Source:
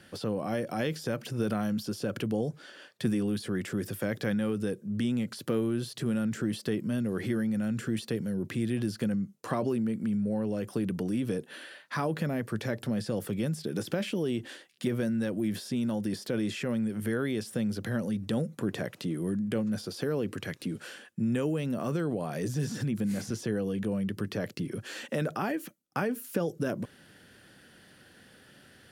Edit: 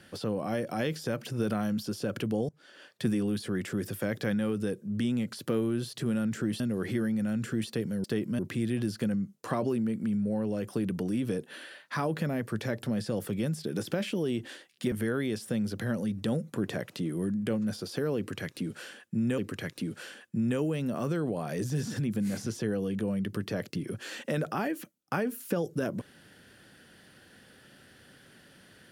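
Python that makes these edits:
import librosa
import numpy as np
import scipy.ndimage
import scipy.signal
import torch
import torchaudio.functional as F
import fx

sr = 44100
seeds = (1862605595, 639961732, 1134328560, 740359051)

y = fx.edit(x, sr, fx.fade_in_from(start_s=2.49, length_s=0.42, floor_db=-22.5),
    fx.move(start_s=6.6, length_s=0.35, to_s=8.39),
    fx.cut(start_s=14.92, length_s=2.05),
    fx.repeat(start_s=20.22, length_s=1.21, count=2), tone=tone)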